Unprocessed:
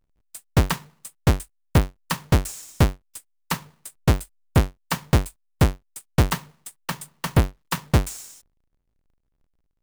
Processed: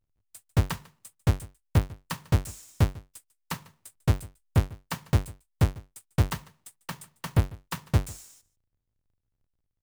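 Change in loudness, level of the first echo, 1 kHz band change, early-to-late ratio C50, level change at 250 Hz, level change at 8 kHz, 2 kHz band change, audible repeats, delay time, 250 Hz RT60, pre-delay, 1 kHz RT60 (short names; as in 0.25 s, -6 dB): -5.0 dB, -21.5 dB, -8.5 dB, none, -7.5 dB, -8.5 dB, -8.5 dB, 1, 0.147 s, none, none, none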